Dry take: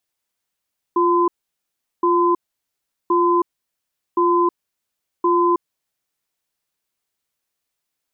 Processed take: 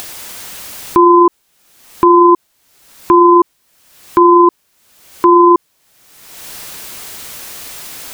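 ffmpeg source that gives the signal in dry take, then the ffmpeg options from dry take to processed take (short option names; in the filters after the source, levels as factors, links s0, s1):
-f lavfi -i "aevalsrc='0.158*(sin(2*PI*349*t)+sin(2*PI*1020*t))*clip(min(mod(t,1.07),0.32-mod(t,1.07))/0.005,0,1)':d=5.14:s=44100"
-af "acompressor=mode=upward:threshold=0.0562:ratio=2.5,alimiter=level_in=9.44:limit=0.891:release=50:level=0:latency=1"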